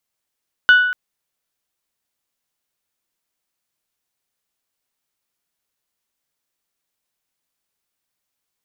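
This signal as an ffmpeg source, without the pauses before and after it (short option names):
-f lavfi -i "aevalsrc='0.562*pow(10,-3*t/0.9)*sin(2*PI*1480*t)+0.158*pow(10,-3*t/0.554)*sin(2*PI*2960*t)+0.0447*pow(10,-3*t/0.488)*sin(2*PI*3552*t)+0.0126*pow(10,-3*t/0.417)*sin(2*PI*4440*t)+0.00355*pow(10,-3*t/0.341)*sin(2*PI*5920*t)':d=0.24:s=44100"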